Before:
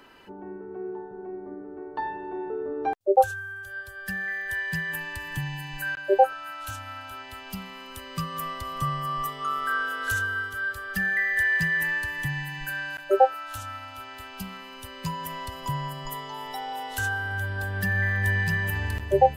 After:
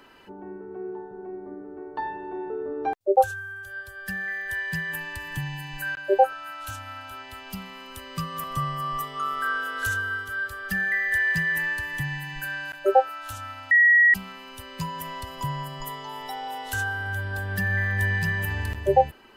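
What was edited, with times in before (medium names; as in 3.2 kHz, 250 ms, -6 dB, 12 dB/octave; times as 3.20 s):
8.44–8.69 s: delete
13.96–14.39 s: bleep 1.91 kHz -13 dBFS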